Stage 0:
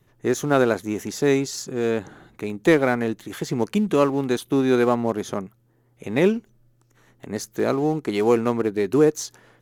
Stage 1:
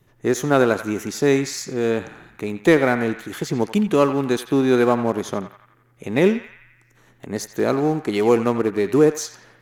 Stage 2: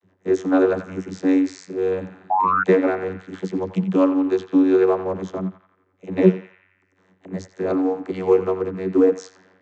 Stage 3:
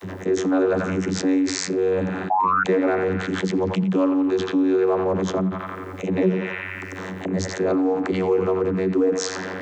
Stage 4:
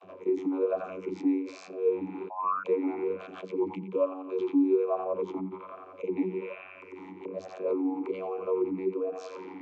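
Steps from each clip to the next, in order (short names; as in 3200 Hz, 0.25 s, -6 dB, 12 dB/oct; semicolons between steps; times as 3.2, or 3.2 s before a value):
narrowing echo 87 ms, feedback 65%, band-pass 1800 Hz, level -9.5 dB; gain +2 dB
painted sound rise, 2.29–2.63, 750–1500 Hz -14 dBFS; vocoder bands 32, saw 93.7 Hz
fast leveller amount 70%; gain -7.5 dB
vowel sweep a-u 1.2 Hz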